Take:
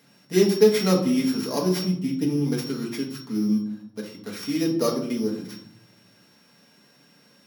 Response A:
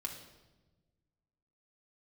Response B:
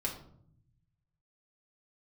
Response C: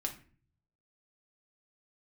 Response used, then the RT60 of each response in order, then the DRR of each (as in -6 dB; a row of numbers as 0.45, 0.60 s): B; 1.2, 0.65, 0.45 s; 0.0, -2.5, 1.5 dB